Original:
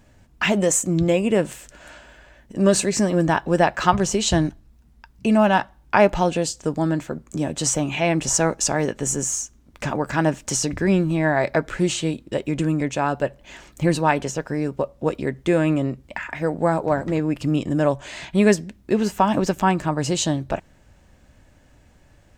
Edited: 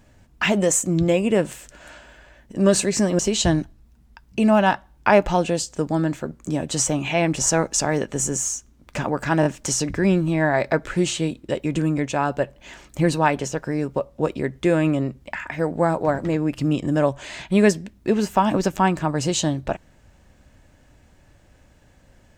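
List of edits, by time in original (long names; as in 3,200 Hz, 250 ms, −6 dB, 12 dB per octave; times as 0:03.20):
0:03.19–0:04.06: remove
0:10.28: stutter 0.02 s, 3 plays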